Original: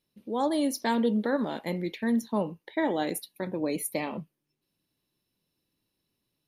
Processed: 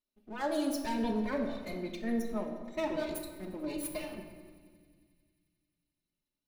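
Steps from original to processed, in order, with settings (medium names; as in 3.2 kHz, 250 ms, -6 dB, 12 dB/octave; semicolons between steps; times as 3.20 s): comb filter that takes the minimum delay 3.3 ms; spectral noise reduction 8 dB; thinning echo 89 ms, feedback 84%, high-pass 420 Hz, level -24 dB; simulated room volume 1800 m³, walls mixed, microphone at 1.4 m; trim -5.5 dB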